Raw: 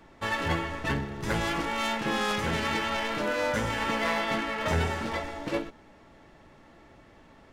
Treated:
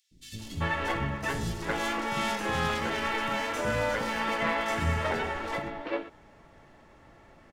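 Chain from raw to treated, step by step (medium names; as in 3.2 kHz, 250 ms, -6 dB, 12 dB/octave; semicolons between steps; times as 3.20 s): three bands offset in time highs, lows, mids 110/390 ms, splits 280/3800 Hz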